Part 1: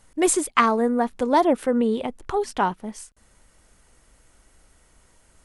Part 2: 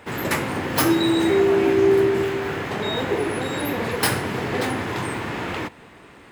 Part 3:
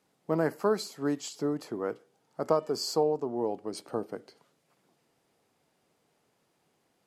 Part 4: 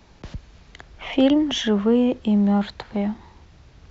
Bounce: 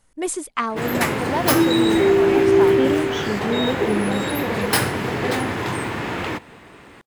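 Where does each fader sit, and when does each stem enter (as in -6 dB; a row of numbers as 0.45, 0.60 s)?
-5.5, +2.0, -8.0, -6.0 dB; 0.00, 0.70, 0.45, 1.60 s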